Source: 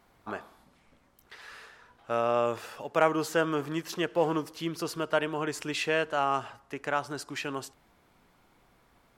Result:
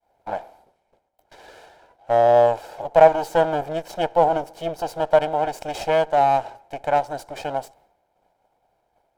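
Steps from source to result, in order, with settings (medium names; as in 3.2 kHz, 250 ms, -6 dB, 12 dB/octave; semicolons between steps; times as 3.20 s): comb filter that takes the minimum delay 1.3 ms; expander -57 dBFS; high-order bell 540 Hz +14 dB; trim -1 dB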